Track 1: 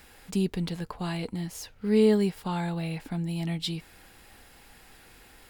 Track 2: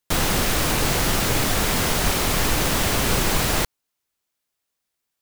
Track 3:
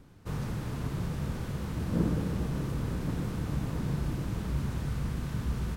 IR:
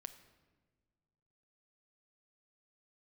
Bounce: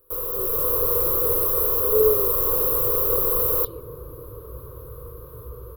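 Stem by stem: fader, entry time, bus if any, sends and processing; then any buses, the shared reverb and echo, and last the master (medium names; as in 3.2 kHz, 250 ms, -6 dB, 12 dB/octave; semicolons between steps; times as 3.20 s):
-1.5 dB, 0.00 s, no send, random flutter of the level, depth 60%
-6.5 dB, 0.00 s, no send, none
-3.0 dB, 0.00 s, no send, none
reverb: none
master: tone controls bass -11 dB, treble -6 dB; level rider gain up to 7.5 dB; FFT filter 110 Hz 0 dB, 210 Hz -24 dB, 490 Hz +8 dB, 770 Hz -25 dB, 1.1 kHz -1 dB, 1.9 kHz -30 dB, 4 kHz -19 dB, 8 kHz -24 dB, 12 kHz +14 dB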